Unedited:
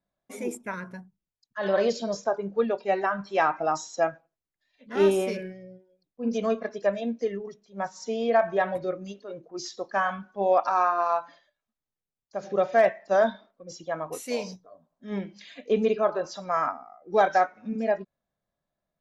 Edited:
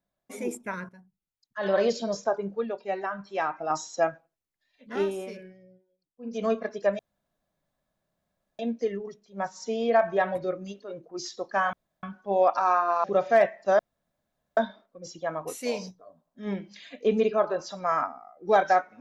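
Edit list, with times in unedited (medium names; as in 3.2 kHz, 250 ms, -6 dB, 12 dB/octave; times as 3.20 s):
0.89–1.88 s: fade in equal-power, from -15.5 dB
2.55–3.70 s: gain -5.5 dB
4.93–6.45 s: dip -9.5 dB, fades 0.13 s
6.99 s: insert room tone 1.60 s
10.13 s: insert room tone 0.30 s
11.14–12.47 s: delete
13.22 s: insert room tone 0.78 s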